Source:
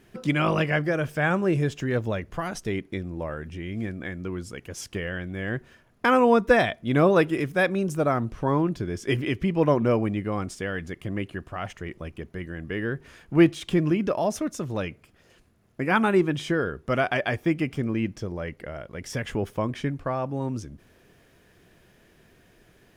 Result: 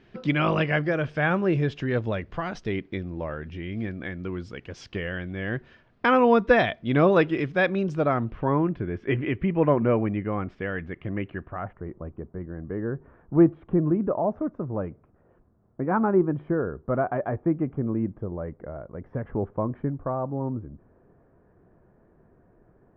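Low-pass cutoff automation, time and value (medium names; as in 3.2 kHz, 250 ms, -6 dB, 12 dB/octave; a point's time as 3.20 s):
low-pass 24 dB/octave
7.96 s 4.5 kHz
8.59 s 2.5 kHz
11.36 s 2.5 kHz
11.77 s 1.2 kHz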